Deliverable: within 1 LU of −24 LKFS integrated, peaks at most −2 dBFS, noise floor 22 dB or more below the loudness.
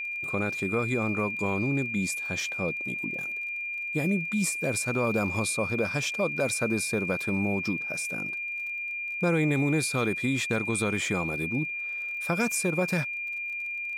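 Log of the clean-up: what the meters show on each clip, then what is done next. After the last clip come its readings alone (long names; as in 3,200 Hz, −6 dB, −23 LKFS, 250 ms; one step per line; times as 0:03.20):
crackle rate 29 per second; interfering tone 2,400 Hz; level of the tone −31 dBFS; integrated loudness −28.0 LKFS; sample peak −14.5 dBFS; target loudness −24.0 LKFS
→ click removal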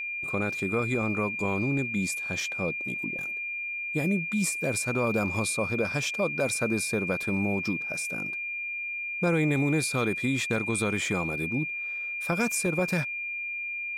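crackle rate 0.29 per second; interfering tone 2,400 Hz; level of the tone −31 dBFS
→ notch filter 2,400 Hz, Q 30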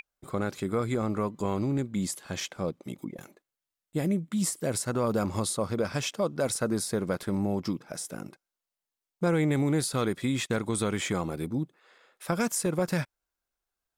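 interfering tone none found; integrated loudness −30.0 LKFS; sample peak −14.5 dBFS; target loudness −24.0 LKFS
→ level +6 dB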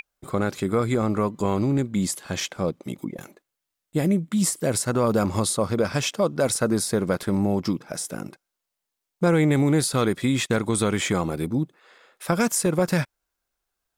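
integrated loudness −24.0 LKFS; sample peak −8.5 dBFS; background noise floor −83 dBFS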